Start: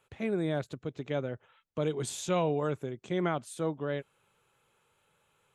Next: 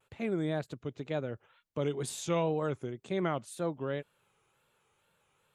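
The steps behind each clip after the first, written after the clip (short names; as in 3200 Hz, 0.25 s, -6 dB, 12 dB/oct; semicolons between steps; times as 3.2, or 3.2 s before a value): wow and flutter 110 cents; gain -1.5 dB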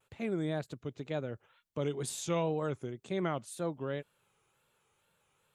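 tone controls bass +1 dB, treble +3 dB; gain -2 dB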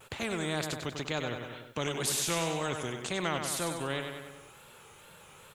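on a send: feedback echo 96 ms, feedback 43%, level -10 dB; on the sum: spectral compressor 2:1; gain +2 dB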